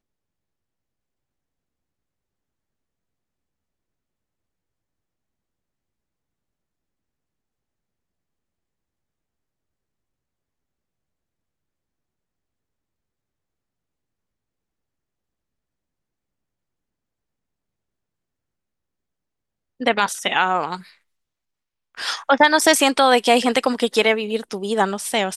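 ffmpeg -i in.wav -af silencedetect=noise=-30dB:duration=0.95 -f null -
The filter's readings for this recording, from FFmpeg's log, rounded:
silence_start: 0.00
silence_end: 19.81 | silence_duration: 19.81
silence_start: 20.77
silence_end: 21.98 | silence_duration: 1.21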